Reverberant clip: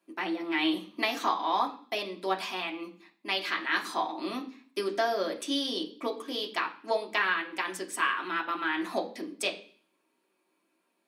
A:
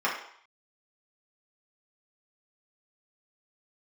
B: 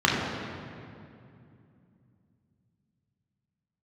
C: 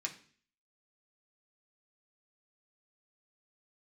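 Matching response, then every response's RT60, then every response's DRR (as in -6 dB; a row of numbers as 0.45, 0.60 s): C; 0.65, 2.6, 0.45 s; -5.5, -4.5, -0.5 dB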